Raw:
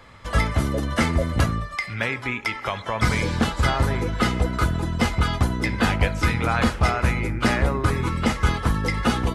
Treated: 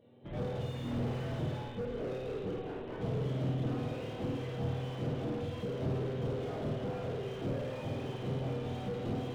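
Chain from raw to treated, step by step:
frequency axis turned over on the octave scale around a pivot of 1,000 Hz
flat-topped bell 1,300 Hz −13.5 dB
in parallel at −10 dB: comparator with hysteresis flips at −30 dBFS
on the sum: multi-voice chorus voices 4, 0.26 Hz, delay 29 ms, depth 4 ms
0:00.84–0:01.35: log-companded quantiser 2 bits
flutter between parallel walls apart 9.3 metres, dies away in 0.8 s
on a send at −11 dB: convolution reverb RT60 4.1 s, pre-delay 71 ms
on the sum: downsampling to 8,000 Hz
slew-rate limiting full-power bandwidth 21 Hz
level −8 dB

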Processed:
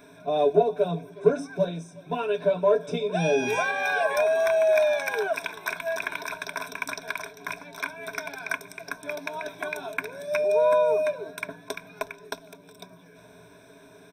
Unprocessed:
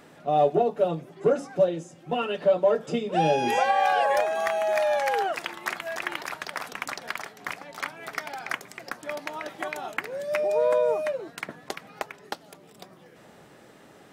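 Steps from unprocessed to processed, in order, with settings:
EQ curve with evenly spaced ripples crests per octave 1.6, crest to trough 18 dB
single-tap delay 366 ms −22.5 dB
level −3 dB

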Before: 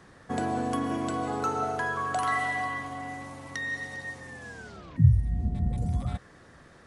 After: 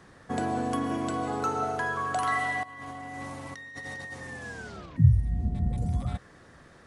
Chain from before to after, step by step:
0:02.63–0:04.86: compressor whose output falls as the input rises −40 dBFS, ratio −1

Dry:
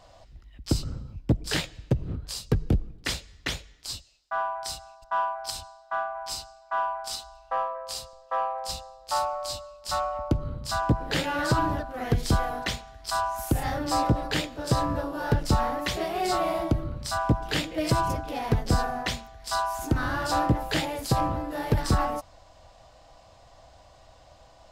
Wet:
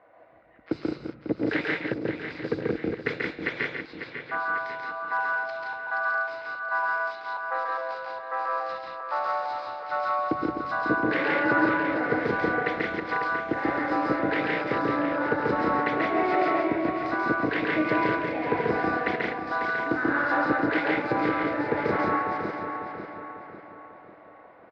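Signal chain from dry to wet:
feedback delay that plays each chunk backwards 273 ms, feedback 68%, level −6 dB
loudspeakers that aren't time-aligned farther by 47 metres −2 dB, 59 metres −3 dB
low-pass that shuts in the quiet parts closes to 2,000 Hz, open at −19.5 dBFS
loudspeaker in its box 250–3,200 Hz, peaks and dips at 320 Hz +7 dB, 460 Hz +7 dB, 1,500 Hz +7 dB, 2,100 Hz +9 dB, 3,100 Hz −8 dB
level −4 dB

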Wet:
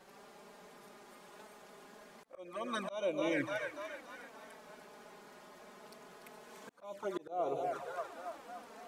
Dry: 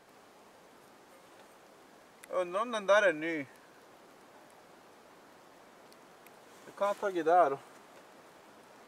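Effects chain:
echo with a time of its own for lows and highs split 620 Hz, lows 120 ms, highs 292 ms, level −9 dB
flanger swept by the level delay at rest 5.6 ms, full sweep at −27 dBFS
volume swells 546 ms
level +4 dB

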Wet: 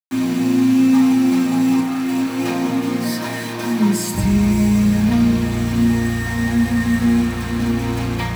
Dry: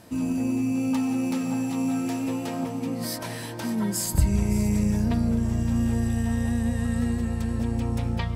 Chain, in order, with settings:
0:01.80–0:02.51: compressor whose output falls as the input rises −30 dBFS, ratio −0.5
bit reduction 6 bits
convolution reverb RT60 0.50 s, pre-delay 3 ms, DRR −5 dB

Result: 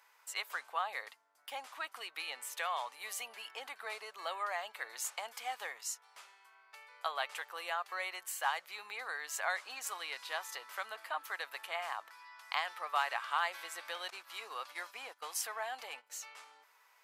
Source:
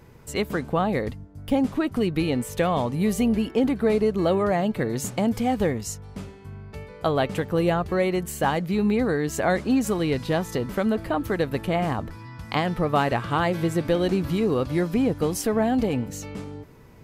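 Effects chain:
high-pass filter 910 Hz 24 dB per octave
0:14.10–0:16.10: noise gate −42 dBFS, range −15 dB
level −6 dB

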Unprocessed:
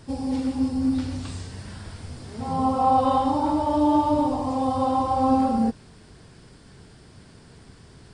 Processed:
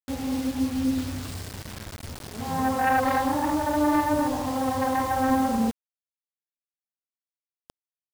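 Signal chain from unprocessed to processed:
phase distortion by the signal itself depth 0.24 ms
bit reduction 6 bits
level −2 dB

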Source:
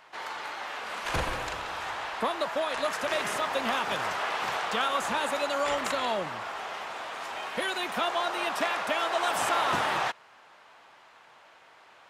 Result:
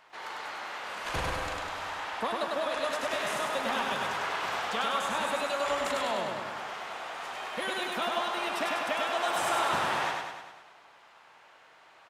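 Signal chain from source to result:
repeating echo 100 ms, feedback 58%, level −3 dB
level −4 dB

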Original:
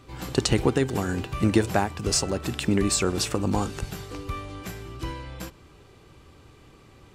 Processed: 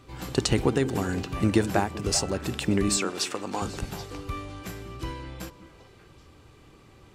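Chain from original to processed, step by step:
0:02.97–0:03.62: meter weighting curve A
on a send: echo through a band-pass that steps 195 ms, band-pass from 260 Hz, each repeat 1.4 octaves, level −8 dB
on the sum: level −1.5 dB

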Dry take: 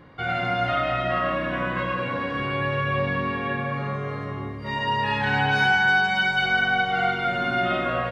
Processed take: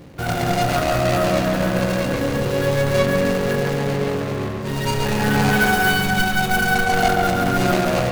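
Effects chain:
running median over 41 samples
high-shelf EQ 2,800 Hz +9 dB
feedback echo with a low-pass in the loop 138 ms, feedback 69%, low-pass 2,300 Hz, level −3.5 dB
level +9 dB

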